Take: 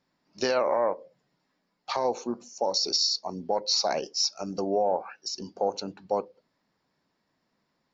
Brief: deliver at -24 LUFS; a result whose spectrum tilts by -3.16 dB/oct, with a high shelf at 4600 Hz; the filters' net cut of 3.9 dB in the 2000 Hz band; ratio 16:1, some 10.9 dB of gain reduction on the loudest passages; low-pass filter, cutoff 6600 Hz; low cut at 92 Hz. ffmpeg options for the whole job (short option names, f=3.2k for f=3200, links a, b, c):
-af "highpass=92,lowpass=6.6k,equalizer=f=2k:t=o:g=-4.5,highshelf=f=4.6k:g=-3.5,acompressor=threshold=-32dB:ratio=16,volume=13.5dB"